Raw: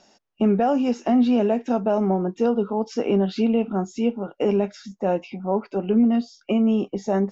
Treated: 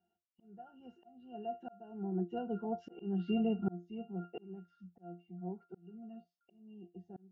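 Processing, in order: Doppler pass-by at 3.18 s, 11 m/s, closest 3.4 m; pitch-class resonator F, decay 0.19 s; slow attack 544 ms; trim +9.5 dB

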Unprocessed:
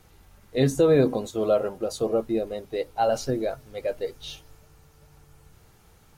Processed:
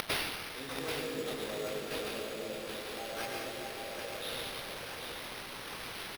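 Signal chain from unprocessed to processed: zero-crossing glitches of -19 dBFS; in parallel at -3 dB: compressor with a negative ratio -24 dBFS; on the sum: doubling 19 ms -5.5 dB; inverted gate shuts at -19 dBFS, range -35 dB; frequency weighting D; plate-style reverb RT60 4.2 s, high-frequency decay 0.3×, pre-delay 90 ms, DRR -5.5 dB; sample-rate reducer 7.3 kHz, jitter 0%; bit-crushed delay 785 ms, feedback 35%, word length 10-bit, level -6 dB; trim +7 dB

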